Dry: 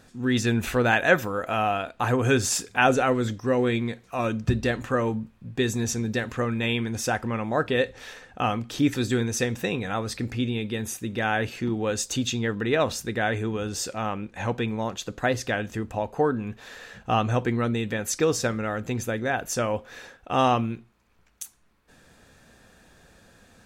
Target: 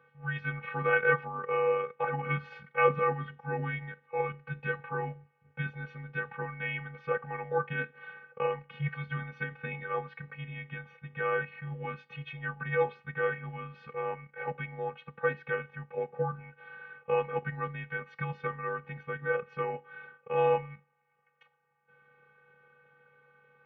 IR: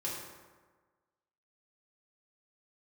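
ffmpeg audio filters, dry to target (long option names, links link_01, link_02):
-af "afftfilt=real='hypot(re,im)*cos(PI*b)':imag='0':win_size=512:overlap=0.75,highpass=frequency=440:width_type=q:width=0.5412,highpass=frequency=440:width_type=q:width=1.307,lowpass=frequency=2600:width_type=q:width=0.5176,lowpass=frequency=2600:width_type=q:width=0.7071,lowpass=frequency=2600:width_type=q:width=1.932,afreqshift=-200"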